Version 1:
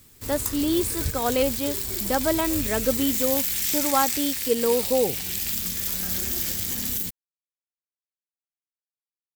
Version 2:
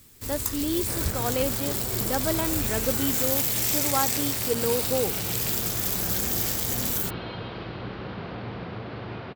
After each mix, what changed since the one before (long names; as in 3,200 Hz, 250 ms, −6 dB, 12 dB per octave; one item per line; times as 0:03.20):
speech −4.5 dB
second sound: unmuted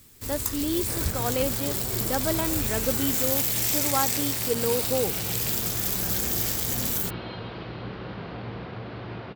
second sound −4.0 dB
reverb: on, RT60 0.40 s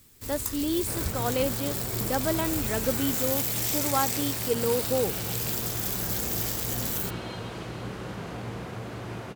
first sound −3.5 dB
second sound: remove Butterworth low-pass 4,700 Hz 48 dB per octave